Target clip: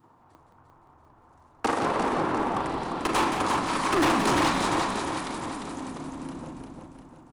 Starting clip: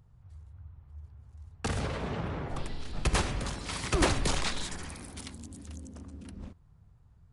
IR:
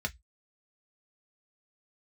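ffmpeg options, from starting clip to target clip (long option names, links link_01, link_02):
-filter_complex "[0:a]asplit=2[link_01][link_02];[1:a]atrim=start_sample=2205,asetrate=22491,aresample=44100,adelay=38[link_03];[link_02][link_03]afir=irnorm=-1:irlink=0,volume=-13.5dB[link_04];[link_01][link_04]amix=inputs=2:normalize=0,acompressor=mode=upward:threshold=-43dB:ratio=2.5,highpass=frequency=300:width_type=q:width=3.5,equalizer=frequency=970:width_type=o:width=1.3:gain=15,asplit=2[link_05][link_06];[link_06]aecho=0:1:350|700|1050|1400|1750|2100:0.501|0.256|0.13|0.0665|0.0339|0.0173[link_07];[link_05][link_07]amix=inputs=2:normalize=0,asoftclip=type=hard:threshold=-17.5dB,adynamicequalizer=threshold=0.0178:dfrequency=620:dqfactor=0.75:tfrequency=620:tqfactor=0.75:attack=5:release=100:ratio=0.375:range=2:mode=cutabove:tftype=bell,asplit=6[link_08][link_09][link_10][link_11][link_12][link_13];[link_09]adelay=173,afreqshift=-110,volume=-7.5dB[link_14];[link_10]adelay=346,afreqshift=-220,volume=-15.2dB[link_15];[link_11]adelay=519,afreqshift=-330,volume=-23dB[link_16];[link_12]adelay=692,afreqshift=-440,volume=-30.7dB[link_17];[link_13]adelay=865,afreqshift=-550,volume=-38.5dB[link_18];[link_08][link_14][link_15][link_16][link_17][link_18]amix=inputs=6:normalize=0"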